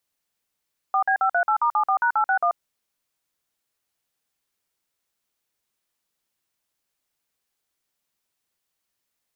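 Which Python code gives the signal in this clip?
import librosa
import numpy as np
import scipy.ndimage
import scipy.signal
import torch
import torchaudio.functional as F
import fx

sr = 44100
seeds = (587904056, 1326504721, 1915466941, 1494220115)

y = fx.dtmf(sr, digits='4B538*74#861', tone_ms=86, gap_ms=49, level_db=-20.0)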